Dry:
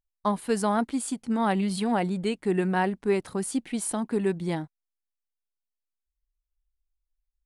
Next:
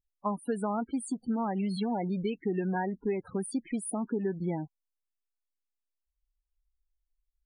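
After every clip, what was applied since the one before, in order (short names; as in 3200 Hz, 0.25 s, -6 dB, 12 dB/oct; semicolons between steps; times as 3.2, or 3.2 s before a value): compressor 6:1, threshold -27 dBFS, peak gain reduction 8 dB; loudest bins only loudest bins 16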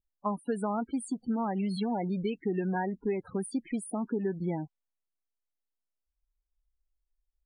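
low-pass opened by the level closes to 920 Hz, open at -28.5 dBFS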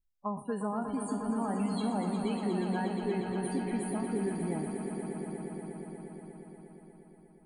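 spectral trails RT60 0.37 s; low shelf 74 Hz +9.5 dB; on a send: swelling echo 0.119 s, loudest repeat 5, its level -9.5 dB; on the sum: gain -4.5 dB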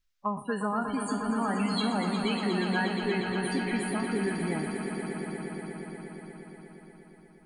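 band shelf 2800 Hz +10 dB 2.7 oct; gain +2.5 dB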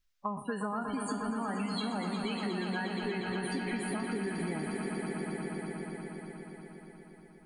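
compressor, threshold -31 dBFS, peak gain reduction 7.5 dB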